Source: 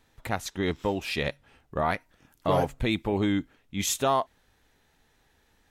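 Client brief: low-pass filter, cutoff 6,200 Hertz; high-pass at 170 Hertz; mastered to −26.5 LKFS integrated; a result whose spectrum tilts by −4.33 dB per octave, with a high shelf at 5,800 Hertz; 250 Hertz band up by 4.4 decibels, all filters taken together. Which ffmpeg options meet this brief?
ffmpeg -i in.wav -af "highpass=170,lowpass=6200,equalizer=frequency=250:width_type=o:gain=7,highshelf=frequency=5800:gain=8,volume=0.5dB" out.wav

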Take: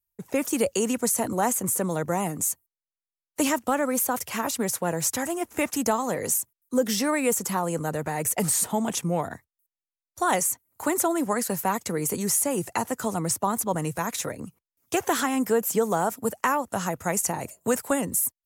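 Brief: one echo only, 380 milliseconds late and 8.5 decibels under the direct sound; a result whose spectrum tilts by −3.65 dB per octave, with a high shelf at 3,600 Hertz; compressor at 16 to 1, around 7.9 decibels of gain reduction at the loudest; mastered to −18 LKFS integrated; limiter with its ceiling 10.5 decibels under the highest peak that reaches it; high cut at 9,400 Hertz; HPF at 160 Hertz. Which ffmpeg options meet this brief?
ffmpeg -i in.wav -af "highpass=160,lowpass=9400,highshelf=frequency=3600:gain=7.5,acompressor=threshold=-25dB:ratio=16,alimiter=limit=-22.5dB:level=0:latency=1,aecho=1:1:380:0.376,volume=14dB" out.wav

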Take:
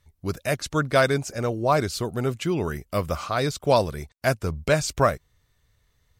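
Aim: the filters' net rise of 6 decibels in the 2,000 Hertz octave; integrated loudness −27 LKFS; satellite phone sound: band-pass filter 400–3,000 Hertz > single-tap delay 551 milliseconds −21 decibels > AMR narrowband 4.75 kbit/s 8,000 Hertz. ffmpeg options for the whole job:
ffmpeg -i in.wav -af "highpass=400,lowpass=3000,equalizer=frequency=2000:width_type=o:gain=9,aecho=1:1:551:0.0891,volume=-1dB" -ar 8000 -c:a libopencore_amrnb -b:a 4750 out.amr

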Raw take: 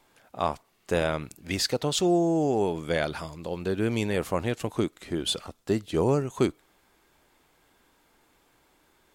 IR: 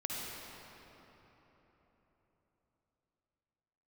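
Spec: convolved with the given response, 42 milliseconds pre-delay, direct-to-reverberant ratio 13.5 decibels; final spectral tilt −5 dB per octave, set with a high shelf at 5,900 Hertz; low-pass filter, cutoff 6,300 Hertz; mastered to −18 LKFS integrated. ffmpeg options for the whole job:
-filter_complex "[0:a]lowpass=6300,highshelf=frequency=5900:gain=7,asplit=2[link_01][link_02];[1:a]atrim=start_sample=2205,adelay=42[link_03];[link_02][link_03]afir=irnorm=-1:irlink=0,volume=-16.5dB[link_04];[link_01][link_04]amix=inputs=2:normalize=0,volume=9.5dB"

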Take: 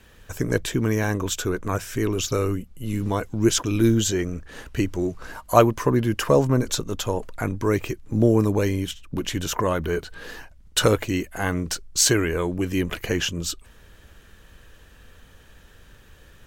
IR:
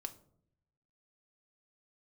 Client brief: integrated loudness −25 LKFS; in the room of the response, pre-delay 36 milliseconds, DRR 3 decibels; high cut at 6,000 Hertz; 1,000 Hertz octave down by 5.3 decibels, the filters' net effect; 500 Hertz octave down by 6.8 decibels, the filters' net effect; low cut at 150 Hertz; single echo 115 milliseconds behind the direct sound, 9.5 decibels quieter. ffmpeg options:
-filter_complex "[0:a]highpass=150,lowpass=6000,equalizer=frequency=500:width_type=o:gain=-8,equalizer=frequency=1000:width_type=o:gain=-4.5,aecho=1:1:115:0.335,asplit=2[link_01][link_02];[1:a]atrim=start_sample=2205,adelay=36[link_03];[link_02][link_03]afir=irnorm=-1:irlink=0,volume=0dB[link_04];[link_01][link_04]amix=inputs=2:normalize=0,volume=0.5dB"

